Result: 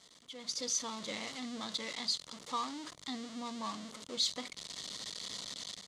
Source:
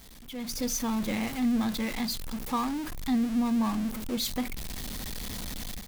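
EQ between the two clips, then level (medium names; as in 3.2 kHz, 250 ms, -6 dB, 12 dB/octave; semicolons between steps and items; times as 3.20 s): dynamic bell 4.4 kHz, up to +5 dB, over -47 dBFS, Q 0.89; cabinet simulation 170–7500 Hz, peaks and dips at 230 Hz -8 dB, 350 Hz -4 dB, 800 Hz -8 dB, 1.6 kHz -9 dB, 2.5 kHz -10 dB, 5.4 kHz -4 dB; bass shelf 410 Hz -10.5 dB; -1.5 dB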